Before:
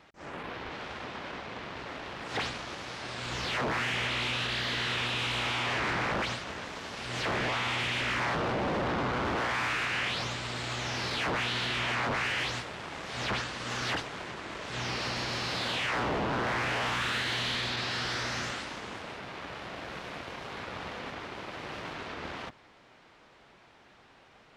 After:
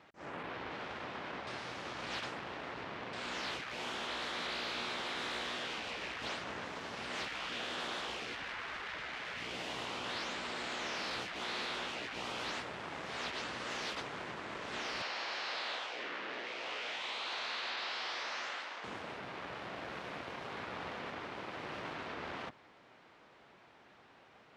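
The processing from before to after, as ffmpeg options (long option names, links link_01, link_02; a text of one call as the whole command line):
ffmpeg -i in.wav -filter_complex "[0:a]asettb=1/sr,asplit=3[link_01][link_02][link_03];[link_01]atrim=end=15.024[link_04];[link_02]atrim=start=15.02:end=18.84,asetpts=PTS-STARTPTS,afade=type=in:duration=0.004:curve=qsin,afade=type=out:start_time=3.816:duration=0.004:curve=qsin,highpass=640,lowpass=5600[link_05];[link_03]atrim=start=18.836[link_06];[link_04][link_05]acrossfade=duration=0.004:curve1=hsin:curve2=qsin[link_07];[link_07][link_06]acrossfade=duration=0.004:curve1=qsin:curve2=hsin,asplit=3[link_08][link_09][link_10];[link_08]atrim=end=1.472[link_11];[link_09]atrim=start=1.468:end=3.132,asetpts=PTS-STARTPTS,areverse[link_12];[link_10]atrim=start=3.128[link_13];[link_11][link_12]acrossfade=duration=0.004:curve1=hsin:curve2=hsin[link_14];[link_14][link_13]acrossfade=duration=0.004:curve1=hsin:curve2=hsin,afftfilt=real='re*lt(hypot(re,im),0.0562)':imag='im*lt(hypot(re,im),0.0562)':win_size=1024:overlap=0.75,highpass=frequency=130:poles=1,highshelf=frequency=4100:gain=-7,volume=-2dB" out.wav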